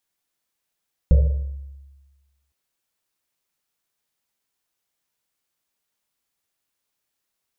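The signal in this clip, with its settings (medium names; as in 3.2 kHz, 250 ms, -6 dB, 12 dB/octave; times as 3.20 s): Risset drum length 1.41 s, pitch 69 Hz, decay 1.34 s, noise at 520 Hz, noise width 150 Hz, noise 10%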